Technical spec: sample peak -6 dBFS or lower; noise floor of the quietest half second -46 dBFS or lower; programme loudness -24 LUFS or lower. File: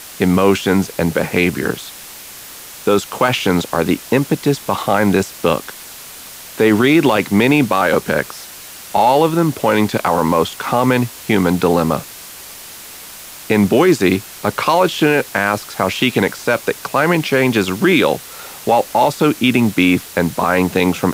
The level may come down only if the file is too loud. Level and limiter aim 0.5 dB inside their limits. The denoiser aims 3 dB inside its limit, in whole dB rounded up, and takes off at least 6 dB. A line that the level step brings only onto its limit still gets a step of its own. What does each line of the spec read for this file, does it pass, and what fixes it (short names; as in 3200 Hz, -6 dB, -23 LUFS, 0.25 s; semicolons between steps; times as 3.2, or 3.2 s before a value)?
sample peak -2.5 dBFS: fail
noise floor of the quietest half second -35 dBFS: fail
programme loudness -15.5 LUFS: fail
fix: denoiser 6 dB, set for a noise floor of -35 dBFS; gain -9 dB